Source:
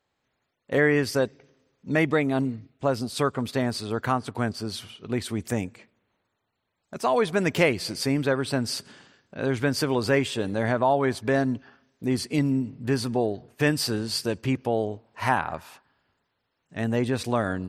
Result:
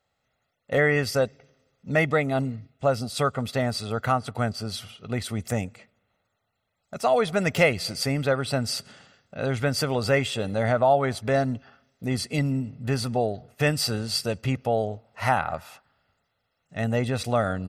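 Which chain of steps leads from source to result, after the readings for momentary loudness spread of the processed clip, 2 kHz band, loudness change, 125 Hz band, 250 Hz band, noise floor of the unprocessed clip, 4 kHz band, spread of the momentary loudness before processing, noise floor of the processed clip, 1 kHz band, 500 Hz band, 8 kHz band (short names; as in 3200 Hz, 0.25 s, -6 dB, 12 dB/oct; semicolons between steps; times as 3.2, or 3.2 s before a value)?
10 LU, +0.5 dB, +0.5 dB, +2.0 dB, -3.0 dB, -78 dBFS, +1.5 dB, 9 LU, -77 dBFS, +1.5 dB, +1.0 dB, +1.0 dB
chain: comb 1.5 ms, depth 56%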